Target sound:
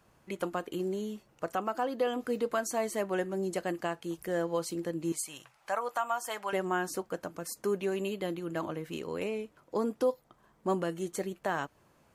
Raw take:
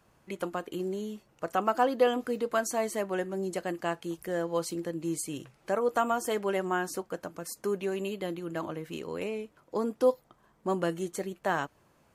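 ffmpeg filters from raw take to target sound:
-filter_complex "[0:a]asettb=1/sr,asplit=3[a][b][c];[a]atrim=end=5.124[d];[b]atrim=start=5.12:end=6.53,asetpts=PTS-STARTPTS,afade=t=in:d=0.004:c=qsin,afade=t=out:st=1.406:d=0.004:c=qsin,lowshelf=f=550:t=q:w=1.5:g=-13.5[e];[c]atrim=start=6.526[f];[d][e]acrossfade=d=0.004:c1=hsin:c2=qsin[g];[g][f]acrossfade=d=0.004:c1=qsin:c2=hsin,alimiter=limit=-19.5dB:level=0:latency=1:release=319"

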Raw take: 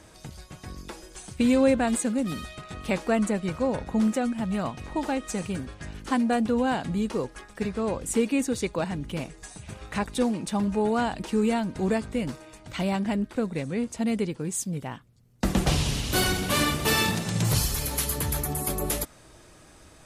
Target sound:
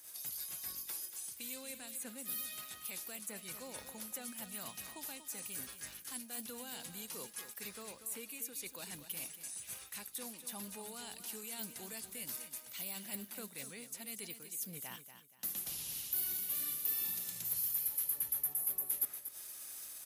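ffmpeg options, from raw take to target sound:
-filter_complex "[0:a]aderivative,acrossover=split=420|2700[a][b][c];[a]acompressor=threshold=-54dB:ratio=4[d];[b]acompressor=threshold=-53dB:ratio=4[e];[c]acompressor=threshold=-41dB:ratio=4[f];[d][e][f]amix=inputs=3:normalize=0,agate=range=-11dB:threshold=-59dB:ratio=16:detection=peak,areverse,acompressor=threshold=-55dB:ratio=6,areverse,aexciter=amount=5:drive=7.6:freq=11k,lowshelf=f=210:g=8.5,aecho=1:1:237|474|711:0.299|0.0925|0.0287,volume=9dB"

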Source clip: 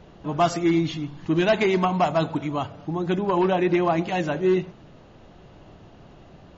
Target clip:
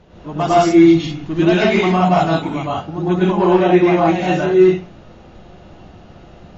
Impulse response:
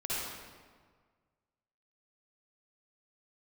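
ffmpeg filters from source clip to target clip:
-filter_complex "[1:a]atrim=start_sample=2205,atrim=end_sample=4410,asetrate=22932,aresample=44100[a];[0:a][a]afir=irnorm=-1:irlink=0"

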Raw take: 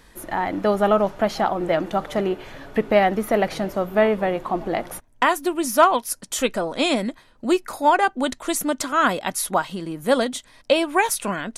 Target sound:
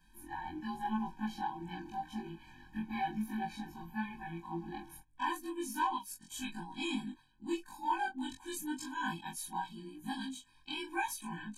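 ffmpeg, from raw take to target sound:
-af "afftfilt=real='re':imag='-im':win_size=2048:overlap=0.75,flanger=delay=18:depth=4:speed=0.88,afftfilt=real='re*eq(mod(floor(b*sr/1024/370),2),0)':imag='im*eq(mod(floor(b*sr/1024/370),2),0)':win_size=1024:overlap=0.75,volume=-6.5dB"

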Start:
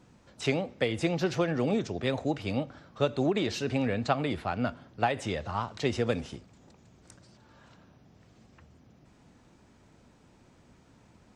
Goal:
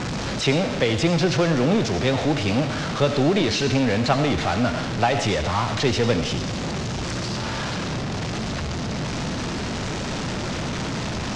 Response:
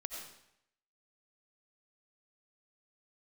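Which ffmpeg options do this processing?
-filter_complex "[0:a]aeval=exprs='val(0)+0.5*0.0473*sgn(val(0))':c=same,lowpass=f=6.2k:w=0.5412,lowpass=f=6.2k:w=1.3066,equalizer=f=150:w=1.5:g=3,asplit=2[a][b];[1:a]atrim=start_sample=2205,highshelf=f=4k:g=8.5[c];[b][c]afir=irnorm=-1:irlink=0,volume=-1.5dB[d];[a][d]amix=inputs=2:normalize=0"

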